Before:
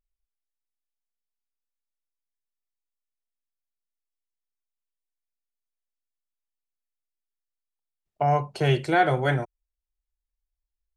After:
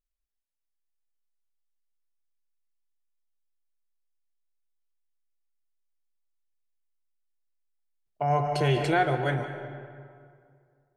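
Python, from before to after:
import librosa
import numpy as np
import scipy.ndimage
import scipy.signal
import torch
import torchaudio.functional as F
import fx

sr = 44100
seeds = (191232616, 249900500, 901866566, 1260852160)

y = fx.rev_freeverb(x, sr, rt60_s=2.2, hf_ratio=0.6, predelay_ms=110, drr_db=8.0)
y = fx.env_flatten(y, sr, amount_pct=50, at=(8.3, 9.03))
y = y * 10.0 ** (-4.5 / 20.0)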